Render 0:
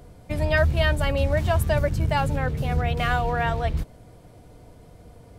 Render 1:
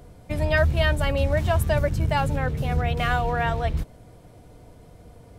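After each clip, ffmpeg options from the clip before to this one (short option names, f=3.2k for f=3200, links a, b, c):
-af "bandreject=f=4.6k:w=30"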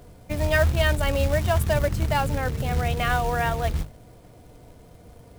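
-af "bandreject=f=50:t=h:w=6,bandreject=f=100:t=h:w=6,bandreject=f=150:t=h:w=6,acrusher=bits=4:mode=log:mix=0:aa=0.000001"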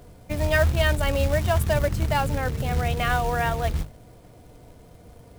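-af anull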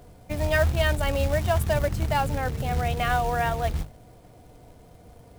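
-af "equalizer=f=760:t=o:w=0.32:g=4,volume=-2dB"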